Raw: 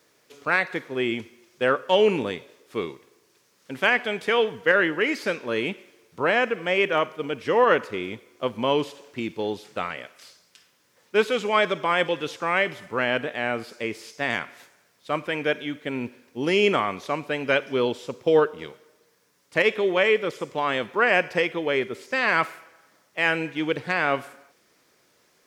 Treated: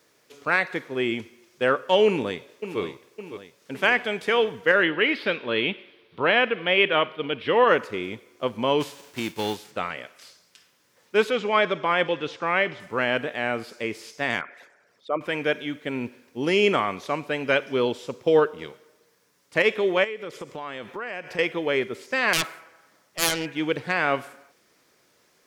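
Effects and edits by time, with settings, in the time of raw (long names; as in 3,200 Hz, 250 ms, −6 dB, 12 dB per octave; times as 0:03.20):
0:02.06–0:02.81: delay throw 560 ms, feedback 55%, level −10.5 dB
0:04.83–0:07.68: high shelf with overshoot 4,900 Hz −12.5 dB, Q 3
0:08.80–0:09.70: spectral envelope flattened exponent 0.6
0:11.30–0:12.80: low-pass filter 4,500 Hz
0:14.41–0:15.21: spectral envelope exaggerated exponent 2
0:20.04–0:21.39: downward compressor 4 to 1, threshold −32 dBFS
0:22.33–0:23.46: phase distortion by the signal itself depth 0.59 ms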